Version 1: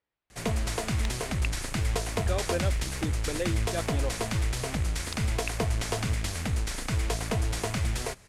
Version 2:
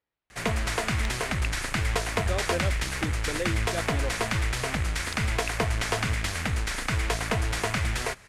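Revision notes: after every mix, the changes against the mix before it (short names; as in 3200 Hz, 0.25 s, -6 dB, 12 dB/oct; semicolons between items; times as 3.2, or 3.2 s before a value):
background: add bell 1700 Hz +8.5 dB 2 oct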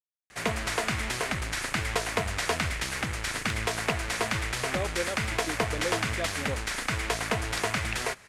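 speech: entry +2.45 s; master: add low shelf 100 Hz -11 dB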